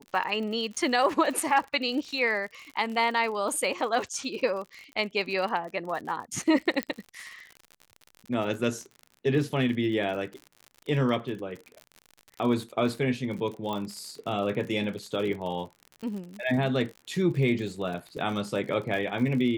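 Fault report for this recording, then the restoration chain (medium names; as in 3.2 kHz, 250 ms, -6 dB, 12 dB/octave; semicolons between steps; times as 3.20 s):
crackle 60 per s -35 dBFS
6.83 s: pop -14 dBFS
13.73 s: pop -20 dBFS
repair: de-click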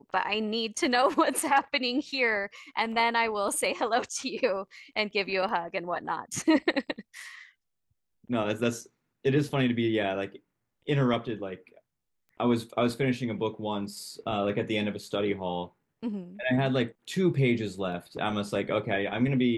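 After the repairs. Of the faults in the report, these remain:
nothing left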